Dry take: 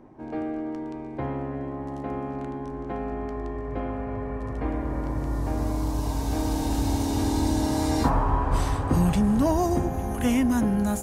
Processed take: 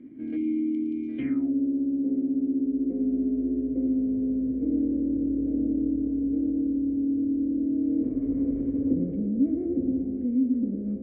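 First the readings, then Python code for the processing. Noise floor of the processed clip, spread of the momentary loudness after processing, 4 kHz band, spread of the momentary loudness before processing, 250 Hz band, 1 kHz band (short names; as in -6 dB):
-32 dBFS, 2 LU, under -25 dB, 11 LU, +3.0 dB, under -30 dB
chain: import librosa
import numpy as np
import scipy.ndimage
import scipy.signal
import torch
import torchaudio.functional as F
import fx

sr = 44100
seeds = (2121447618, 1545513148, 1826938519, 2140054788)

y = 10.0 ** (-25.0 / 20.0) * np.tanh(x / 10.0 ** (-25.0 / 20.0))
y = fx.vowel_filter(y, sr, vowel='i')
y = fx.low_shelf(y, sr, hz=85.0, db=11.5)
y = y + 10.0 ** (-8.0 / 20.0) * np.pad(y, (int(112 * sr / 1000.0), 0))[:len(y)]
y = fx.filter_sweep_lowpass(y, sr, from_hz=11000.0, to_hz=500.0, start_s=0.96, end_s=1.53, q=4.4)
y = fx.high_shelf(y, sr, hz=3100.0, db=-9.5)
y = fx.spec_erase(y, sr, start_s=0.36, length_s=0.72, low_hz=420.0, high_hz=2100.0)
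y = fx.rider(y, sr, range_db=5, speed_s=0.5)
y = y * 10.0 ** (7.0 / 20.0)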